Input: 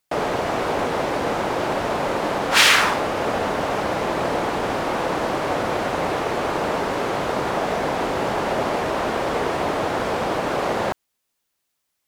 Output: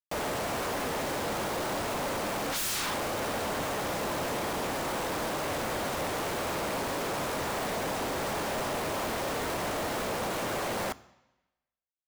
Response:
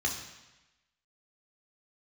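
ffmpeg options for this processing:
-filter_complex "[0:a]acrusher=bits=4:mix=0:aa=0.000001,aeval=exprs='0.106*(abs(mod(val(0)/0.106+3,4)-2)-1)':c=same,asplit=2[s0][s1];[1:a]atrim=start_sample=2205[s2];[s1][s2]afir=irnorm=-1:irlink=0,volume=0.0841[s3];[s0][s3]amix=inputs=2:normalize=0,volume=0.501"

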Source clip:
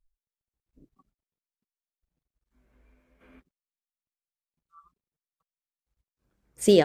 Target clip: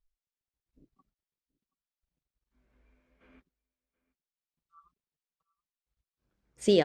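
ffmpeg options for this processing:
-filter_complex "[0:a]lowpass=4900,highshelf=f=3800:g=6.5,asplit=2[s0][s1];[s1]aecho=0:1:727:0.0668[s2];[s0][s2]amix=inputs=2:normalize=0,volume=0.562"

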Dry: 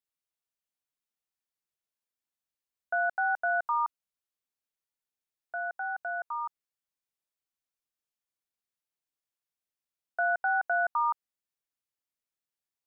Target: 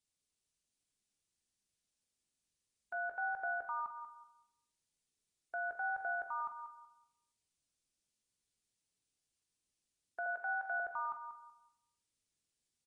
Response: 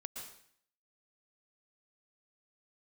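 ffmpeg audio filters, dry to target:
-filter_complex "[0:a]asettb=1/sr,asplit=3[s0][s1][s2];[s0]atrim=end=10.264[s3];[s1]atrim=start=10.26:end=10.8,asetpts=PTS-STARTPTS,afade=t=in:d=0.004:c=qsin,afade=t=out:st=0.536:d=0.004:c=qsin,highpass=710[s4];[s2]atrim=start=10.796[s5];[s3][s4]acrossfade=d=0.004:c1=hsin:c2=qsin[s6];[s6][s5]acrossfade=d=0.004:c1=qsin:c2=hsin,equalizer=f=1100:w=0.48:g=-13.5,alimiter=level_in=7.08:limit=0.0631:level=0:latency=1:release=251,volume=0.141,aecho=1:1:188|376|564:0.299|0.0716|0.0172,asplit=2[s7][s8];[1:a]atrim=start_sample=2205,adelay=44[s9];[s8][s9]afir=irnorm=-1:irlink=0,volume=0.422[s10];[s7][s10]amix=inputs=2:normalize=0,volume=2.66" -ar 22050 -c:a aac -b:a 32k

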